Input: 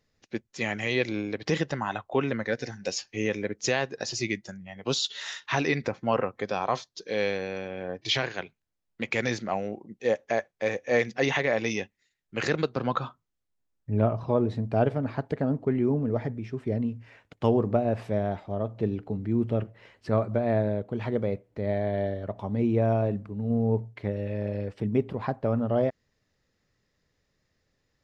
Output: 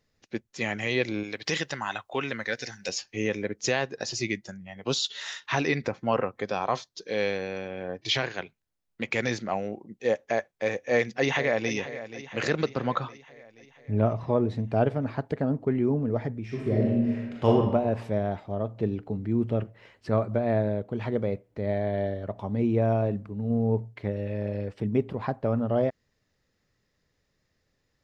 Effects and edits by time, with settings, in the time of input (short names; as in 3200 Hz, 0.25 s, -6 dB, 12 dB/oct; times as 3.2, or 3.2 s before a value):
1.23–2.89 tilt shelf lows -7 dB, about 1200 Hz
10.82–11.73 echo throw 0.48 s, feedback 60%, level -13 dB
16.44–17.47 reverb throw, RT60 1.3 s, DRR -4.5 dB